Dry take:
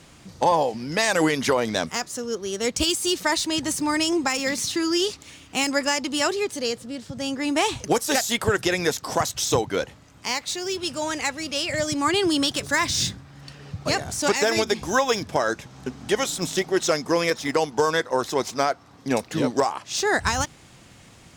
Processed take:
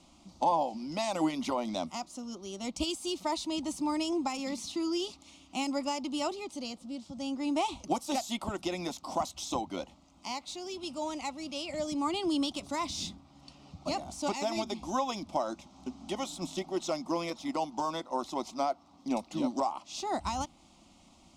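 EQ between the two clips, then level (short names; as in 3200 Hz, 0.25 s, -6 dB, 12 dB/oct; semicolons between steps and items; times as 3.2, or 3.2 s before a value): dynamic EQ 6100 Hz, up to -5 dB, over -38 dBFS, Q 0.85; air absorption 54 m; fixed phaser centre 450 Hz, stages 6; -5.5 dB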